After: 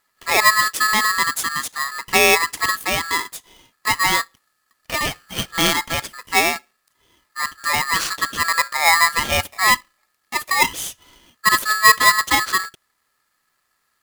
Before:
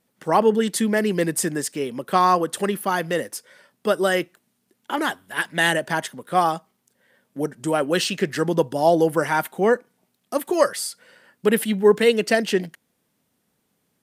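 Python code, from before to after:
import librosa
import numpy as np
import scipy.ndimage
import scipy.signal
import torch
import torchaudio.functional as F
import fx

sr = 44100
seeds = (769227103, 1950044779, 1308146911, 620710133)

y = fx.hpss(x, sr, part='percussive', gain_db=-4)
y = y * np.sign(np.sin(2.0 * np.pi * 1500.0 * np.arange(len(y)) / sr))
y = F.gain(torch.from_numpy(y), 3.0).numpy()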